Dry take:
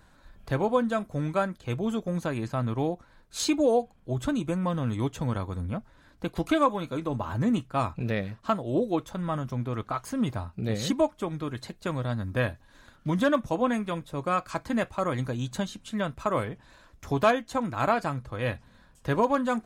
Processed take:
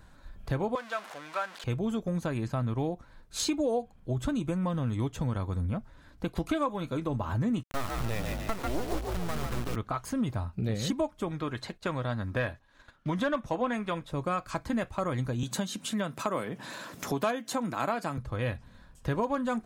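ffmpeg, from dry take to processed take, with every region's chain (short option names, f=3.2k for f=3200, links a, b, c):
-filter_complex "[0:a]asettb=1/sr,asplit=3[a][b][c];[a]atrim=end=0.754[d];[b]atrim=start=0.75:end=1.64,asetpts=PTS-STARTPTS,afade=t=in:d=0.004:c=qsin,afade=t=out:st=0.886:d=0.004:c=qsin,aeval=exprs='val(0)+0.5*0.0266*sgn(val(0))':c=same,highpass=1k,aemphasis=mode=reproduction:type=50fm[e];[c]atrim=start=1.636[f];[d][e]acrossfade=d=0.004:c1=hsin:c2=qsin[g];[g][f]acrossfade=d=0.004:c1=qsin:c2=hsin,asettb=1/sr,asplit=3[h][i][j];[h]atrim=end=7.634[k];[i]atrim=start=7.63:end=9.76,asetpts=PTS-STARTPTS,afade=t=in:d=0.004:c=qsin,afade=t=out:st=2.126:d=0.004:c=qsin,acrusher=bits=3:dc=4:mix=0:aa=0.000001,asplit=6[l][m][n][o][p][q];[m]adelay=144,afreqshift=54,volume=-4.5dB[r];[n]adelay=288,afreqshift=108,volume=-12.5dB[s];[o]adelay=432,afreqshift=162,volume=-20.4dB[t];[p]adelay=576,afreqshift=216,volume=-28.4dB[u];[q]adelay=720,afreqshift=270,volume=-36.3dB[v];[l][r][s][t][u][v]amix=inputs=6:normalize=0,atrim=end_sample=93933[w];[j]atrim=start=9.756[x];[k][w]acrossfade=d=0.004:c1=hsin:c2=qsin[y];[y][x]acrossfade=d=0.004:c1=qsin:c2=hsin,asettb=1/sr,asplit=3[z][aa][ab];[z]atrim=end=11.314[ac];[aa]atrim=start=11.31:end=14.11,asetpts=PTS-STARTPTS,afade=t=in:d=0.004:c=qsin,afade=t=out:st=2.796:d=0.004:c=qsin,agate=range=-9dB:threshold=-53dB:ratio=16:release=100:detection=peak,asplit=2[ad][ae];[ae]highpass=f=720:p=1,volume=9dB,asoftclip=type=tanh:threshold=-12dB[af];[ad][af]amix=inputs=2:normalize=0,lowpass=f=3.2k:p=1,volume=-6dB[ag];[ab]atrim=start=14.106[ah];[ac][ag]acrossfade=d=0.004:c1=hsin:c2=qsin[ai];[ai][ah]acrossfade=d=0.004:c1=qsin:c2=hsin,asettb=1/sr,asplit=3[aj][ak][al];[aj]atrim=end=15.434[am];[ak]atrim=start=15.43:end=18.18,asetpts=PTS-STARTPTS,afade=t=in:d=0.004:c=qsin,afade=t=out:st=2.746:d=0.004:c=qsin,highpass=f=160:w=0.5412,highpass=f=160:w=1.3066,acompressor=mode=upward:threshold=-28dB:ratio=2.5:attack=3.2:release=140:knee=2.83:detection=peak,highshelf=f=7.7k:g=7[an];[al]atrim=start=18.176[ao];[am][an]acrossfade=d=0.004:c1=hsin:c2=qsin[ap];[ap][ao]acrossfade=d=0.004:c1=qsin:c2=hsin,lowshelf=f=140:g=6,acompressor=threshold=-28dB:ratio=2.5"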